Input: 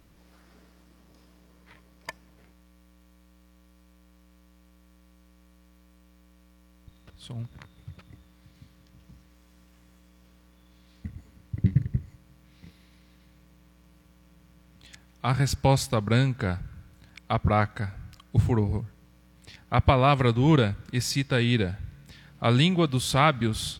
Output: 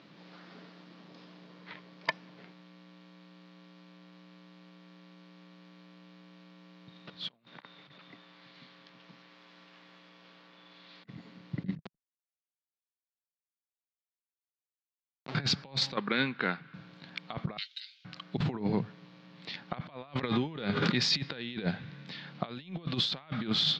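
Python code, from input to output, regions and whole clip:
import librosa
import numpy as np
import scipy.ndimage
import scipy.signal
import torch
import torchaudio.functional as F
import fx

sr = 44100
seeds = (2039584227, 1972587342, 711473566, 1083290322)

y = fx.chain(x, sr, fx.highpass(hz=710.0, slope=6),
    fx.high_shelf(hz=4600.0, db=-7.0),
    fx.over_compress(threshold_db=-58.0, ratio=-0.5), at=(7.28, 11.09))
y = fx.chain(y, sr, fx.auto_swell(attack_ms=144.0),
    fx.schmitt(flips_db=-28.5),
    fx.env_flatten(amount_pct=100), at=(11.77, 15.35))
y = fx.chain(y, sr, fx.bandpass_edges(low_hz=330.0, high_hz=2700.0),
    fx.peak_eq(hz=630.0, db=-10.5, octaves=1.5), at=(15.96, 16.74))
y = fx.chain(y, sr, fx.cheby1_highpass(hz=2900.0, order=4),
    fx.comb(ms=5.8, depth=0.54), at=(17.57, 18.05))
y = fx.chain(y, sr, fx.comb_fb(f0_hz=410.0, decay_s=0.45, harmonics='all', damping=0.0, mix_pct=50),
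    fx.sustainer(db_per_s=24.0), at=(20.22, 21.16))
y = scipy.signal.sosfilt(scipy.signal.ellip(3, 1.0, 40, [160.0, 4200.0], 'bandpass', fs=sr, output='sos'), y)
y = fx.high_shelf(y, sr, hz=2600.0, db=6.0)
y = fx.over_compress(y, sr, threshold_db=-32.0, ratio=-0.5)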